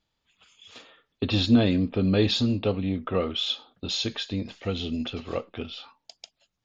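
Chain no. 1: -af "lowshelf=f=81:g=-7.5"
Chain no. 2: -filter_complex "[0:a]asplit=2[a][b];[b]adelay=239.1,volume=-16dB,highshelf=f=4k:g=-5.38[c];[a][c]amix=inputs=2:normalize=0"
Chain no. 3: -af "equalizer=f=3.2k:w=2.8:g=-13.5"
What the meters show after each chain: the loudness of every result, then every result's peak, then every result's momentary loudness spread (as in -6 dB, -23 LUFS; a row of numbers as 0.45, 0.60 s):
-27.0, -26.5, -27.0 LUFS; -9.0, -8.5, -8.5 dBFS; 13, 13, 16 LU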